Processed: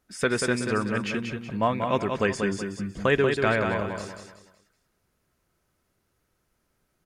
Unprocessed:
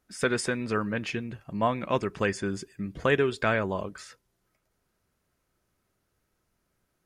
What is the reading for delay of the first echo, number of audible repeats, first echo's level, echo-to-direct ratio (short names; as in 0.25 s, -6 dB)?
0.187 s, 4, -5.5 dB, -5.0 dB